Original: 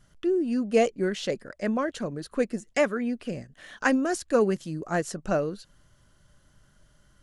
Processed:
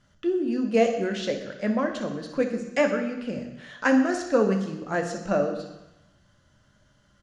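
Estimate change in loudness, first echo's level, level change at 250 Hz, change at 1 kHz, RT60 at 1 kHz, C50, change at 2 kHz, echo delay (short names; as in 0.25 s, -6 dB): +1.5 dB, -12.5 dB, +2.5 dB, +1.5 dB, 1.1 s, 7.0 dB, +1.5 dB, 62 ms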